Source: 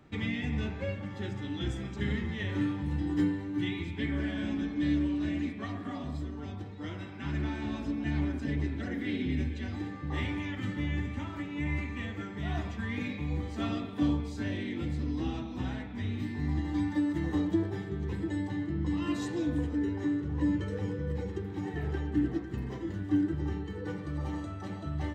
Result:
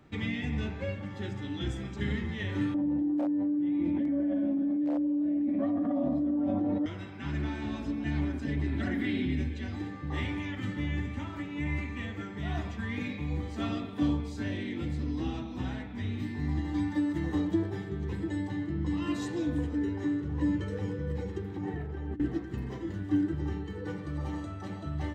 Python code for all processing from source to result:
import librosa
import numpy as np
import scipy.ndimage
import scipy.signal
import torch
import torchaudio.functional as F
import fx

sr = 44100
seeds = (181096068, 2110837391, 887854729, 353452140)

y = fx.chain(x, sr, fx.overflow_wrap(gain_db=21.0),
    fx.double_bandpass(hz=410.0, octaves=0.94),
    fx.env_flatten(amount_pct=100), at=(2.74, 6.86))
y = fx.chain(y, sr, fx.peak_eq(hz=6000.0, db=-5.5, octaves=0.49),
    fx.notch(hz=470.0, q=5.6),
    fx.env_flatten(amount_pct=70), at=(8.57, 9.34))
y = fx.chain(y, sr, fx.high_shelf(hz=2600.0, db=-11.0),
    fx.over_compress(threshold_db=-36.0, ratio=-1.0), at=(21.56, 22.2))